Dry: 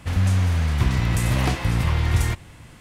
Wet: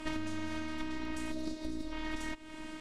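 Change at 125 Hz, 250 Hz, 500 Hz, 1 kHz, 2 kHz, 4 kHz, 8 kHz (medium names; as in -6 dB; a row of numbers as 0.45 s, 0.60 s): -31.0 dB, -8.5 dB, -10.5 dB, -13.5 dB, -12.5 dB, -13.0 dB, -17.0 dB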